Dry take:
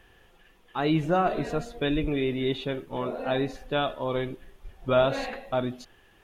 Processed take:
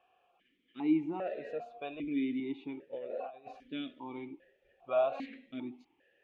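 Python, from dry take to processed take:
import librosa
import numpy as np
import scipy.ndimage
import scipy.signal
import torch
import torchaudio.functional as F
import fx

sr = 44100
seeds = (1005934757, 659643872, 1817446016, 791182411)

y = fx.over_compress(x, sr, threshold_db=-32.0, ratio=-0.5, at=(2.93, 3.68))
y = fx.vowel_held(y, sr, hz=2.5)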